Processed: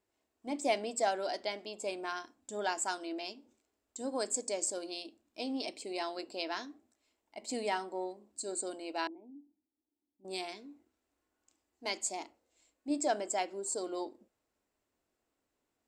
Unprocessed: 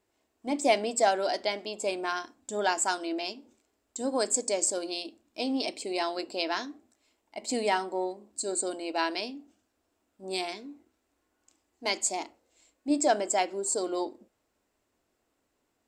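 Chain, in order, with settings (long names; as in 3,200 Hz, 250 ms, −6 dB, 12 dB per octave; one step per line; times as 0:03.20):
0:09.07–0:10.25: formant resonators in series u
level −7 dB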